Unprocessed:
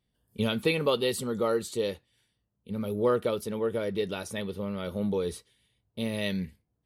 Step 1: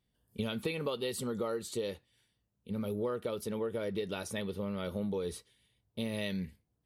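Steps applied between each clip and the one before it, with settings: compressor 6:1, threshold -30 dBFS, peak gain reduction 10 dB; gain -1.5 dB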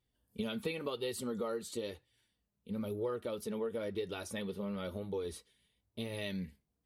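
flange 0.98 Hz, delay 2.1 ms, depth 3 ms, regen -37%; gain +1 dB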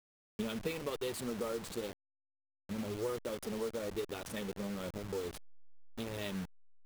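level-crossing sampler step -39.5 dBFS

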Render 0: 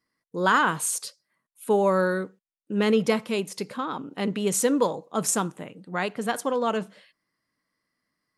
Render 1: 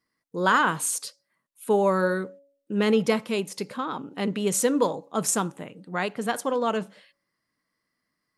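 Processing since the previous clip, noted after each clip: de-hum 280.2 Hz, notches 3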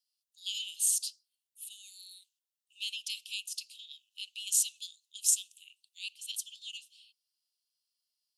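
steep high-pass 2700 Hz 96 dB/oct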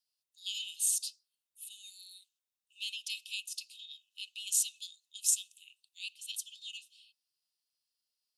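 small resonant body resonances 2600/3700 Hz, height 11 dB, ringing for 0.1 s; gain -2 dB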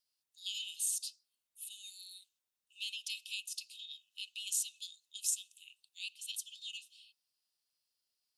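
compressor 1.5:1, threshold -43 dBFS, peak gain reduction 7.5 dB; gain +1 dB

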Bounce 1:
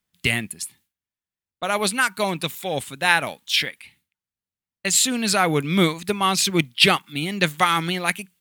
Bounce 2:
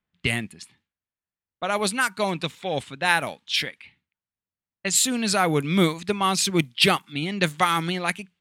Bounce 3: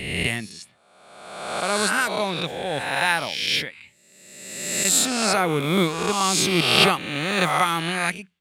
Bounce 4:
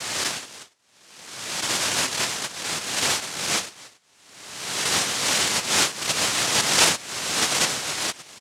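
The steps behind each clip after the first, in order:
low-pass opened by the level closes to 2400 Hz, open at -15 dBFS; dynamic EQ 2600 Hz, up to -3 dB, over -28 dBFS, Q 0.73; gain -1 dB
spectral swells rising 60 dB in 1.33 s; gain -2.5 dB
reverb removal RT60 1.5 s; speakerphone echo 0.28 s, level -18 dB; noise vocoder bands 1

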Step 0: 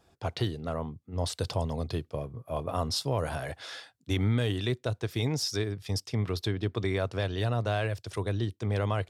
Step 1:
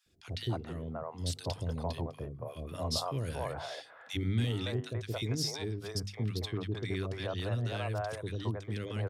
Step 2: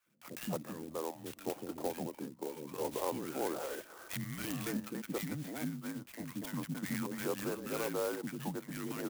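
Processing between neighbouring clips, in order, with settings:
notches 50/100/150/200/250 Hz; three bands offset in time highs, lows, mids 60/280 ms, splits 450/1600 Hz; gain -3 dB
mistuned SSB -160 Hz 240–3200 Hz; HPF 140 Hz 24 dB/oct; clock jitter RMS 0.071 ms; gain +2 dB

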